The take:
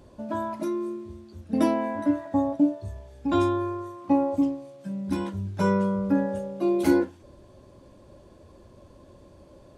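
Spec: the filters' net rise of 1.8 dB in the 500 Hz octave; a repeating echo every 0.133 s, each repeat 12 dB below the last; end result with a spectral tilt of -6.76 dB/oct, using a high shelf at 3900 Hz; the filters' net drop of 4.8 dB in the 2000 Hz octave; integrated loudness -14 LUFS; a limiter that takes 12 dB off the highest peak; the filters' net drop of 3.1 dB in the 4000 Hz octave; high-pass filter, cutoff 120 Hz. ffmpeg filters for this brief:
-af "highpass=120,equalizer=f=500:t=o:g=3,equalizer=f=2k:t=o:g=-8,highshelf=f=3.9k:g=6,equalizer=f=4k:t=o:g=-5.5,alimiter=limit=-20dB:level=0:latency=1,aecho=1:1:133|266|399:0.251|0.0628|0.0157,volume=15.5dB"

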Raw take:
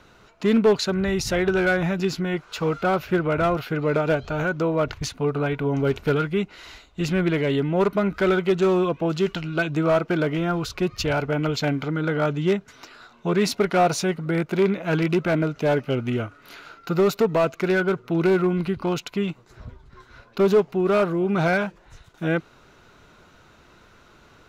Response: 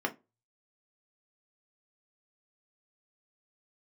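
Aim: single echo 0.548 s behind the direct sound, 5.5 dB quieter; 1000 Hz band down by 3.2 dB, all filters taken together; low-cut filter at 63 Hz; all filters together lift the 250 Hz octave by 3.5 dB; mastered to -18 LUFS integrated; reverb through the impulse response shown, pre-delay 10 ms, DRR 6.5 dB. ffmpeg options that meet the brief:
-filter_complex "[0:a]highpass=63,equalizer=f=250:t=o:g=6,equalizer=f=1k:t=o:g=-5.5,aecho=1:1:548:0.531,asplit=2[a][b];[1:a]atrim=start_sample=2205,adelay=10[c];[b][c]afir=irnorm=-1:irlink=0,volume=-13dB[d];[a][d]amix=inputs=2:normalize=0,volume=2dB"

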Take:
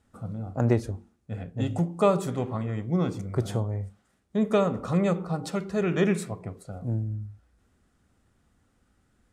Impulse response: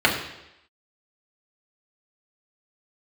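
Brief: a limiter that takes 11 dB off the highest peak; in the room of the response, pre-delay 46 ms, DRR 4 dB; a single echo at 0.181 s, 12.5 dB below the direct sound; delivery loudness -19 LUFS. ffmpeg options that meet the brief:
-filter_complex "[0:a]alimiter=limit=-20dB:level=0:latency=1,aecho=1:1:181:0.237,asplit=2[a][b];[1:a]atrim=start_sample=2205,adelay=46[c];[b][c]afir=irnorm=-1:irlink=0,volume=-24dB[d];[a][d]amix=inputs=2:normalize=0,volume=11dB"

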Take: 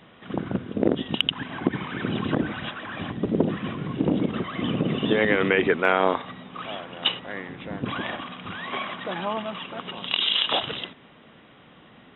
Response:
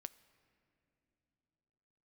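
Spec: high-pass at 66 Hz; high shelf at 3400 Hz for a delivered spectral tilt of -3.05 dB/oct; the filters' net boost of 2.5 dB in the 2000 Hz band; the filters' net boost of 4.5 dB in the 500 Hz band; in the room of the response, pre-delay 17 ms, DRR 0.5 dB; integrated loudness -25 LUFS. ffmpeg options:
-filter_complex "[0:a]highpass=66,equalizer=f=500:t=o:g=5.5,equalizer=f=2k:t=o:g=4.5,highshelf=f=3.4k:g=-5.5,asplit=2[a][b];[1:a]atrim=start_sample=2205,adelay=17[c];[b][c]afir=irnorm=-1:irlink=0,volume=5dB[d];[a][d]amix=inputs=2:normalize=0,volume=-3.5dB"

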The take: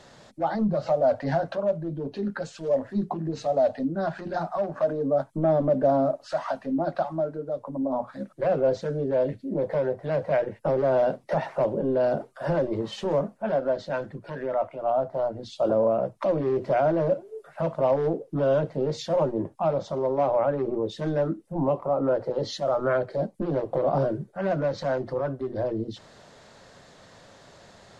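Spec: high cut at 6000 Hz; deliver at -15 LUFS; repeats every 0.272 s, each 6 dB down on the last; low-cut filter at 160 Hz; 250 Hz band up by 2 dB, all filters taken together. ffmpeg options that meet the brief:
-af "highpass=160,lowpass=6k,equalizer=f=250:t=o:g=3.5,aecho=1:1:272|544|816|1088|1360|1632:0.501|0.251|0.125|0.0626|0.0313|0.0157,volume=10dB"

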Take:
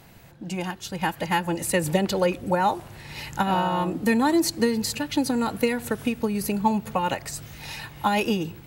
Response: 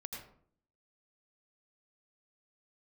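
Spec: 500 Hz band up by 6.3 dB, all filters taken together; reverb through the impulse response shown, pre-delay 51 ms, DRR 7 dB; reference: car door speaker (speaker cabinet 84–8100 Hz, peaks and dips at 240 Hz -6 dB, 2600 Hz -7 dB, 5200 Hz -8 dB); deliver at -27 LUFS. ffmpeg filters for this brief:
-filter_complex "[0:a]equalizer=f=500:t=o:g=7.5,asplit=2[a][b];[1:a]atrim=start_sample=2205,adelay=51[c];[b][c]afir=irnorm=-1:irlink=0,volume=-5dB[d];[a][d]amix=inputs=2:normalize=0,highpass=84,equalizer=f=240:t=q:w=4:g=-6,equalizer=f=2.6k:t=q:w=4:g=-7,equalizer=f=5.2k:t=q:w=4:g=-8,lowpass=f=8.1k:w=0.5412,lowpass=f=8.1k:w=1.3066,volume=-5dB"

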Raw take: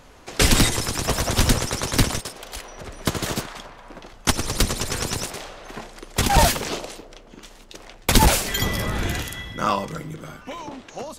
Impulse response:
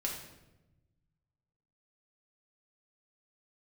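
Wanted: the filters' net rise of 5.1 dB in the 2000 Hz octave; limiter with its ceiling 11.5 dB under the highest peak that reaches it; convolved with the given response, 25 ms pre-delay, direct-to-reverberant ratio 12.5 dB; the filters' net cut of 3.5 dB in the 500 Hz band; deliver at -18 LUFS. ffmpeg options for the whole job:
-filter_complex "[0:a]equalizer=f=500:t=o:g=-5,equalizer=f=2k:t=o:g=6.5,alimiter=limit=-13dB:level=0:latency=1,asplit=2[a][b];[1:a]atrim=start_sample=2205,adelay=25[c];[b][c]afir=irnorm=-1:irlink=0,volume=-15dB[d];[a][d]amix=inputs=2:normalize=0,volume=7.5dB"

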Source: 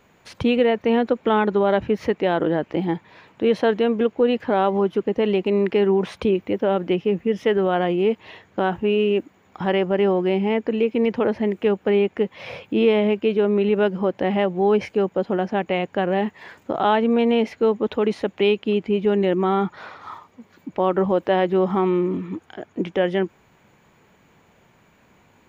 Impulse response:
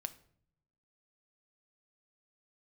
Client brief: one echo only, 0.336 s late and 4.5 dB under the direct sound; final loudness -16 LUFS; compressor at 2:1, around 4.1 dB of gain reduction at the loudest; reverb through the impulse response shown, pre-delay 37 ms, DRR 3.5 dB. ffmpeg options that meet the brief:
-filter_complex "[0:a]acompressor=threshold=-21dB:ratio=2,aecho=1:1:336:0.596,asplit=2[a][b];[1:a]atrim=start_sample=2205,adelay=37[c];[b][c]afir=irnorm=-1:irlink=0,volume=-1dB[d];[a][d]amix=inputs=2:normalize=0,volume=6dB"

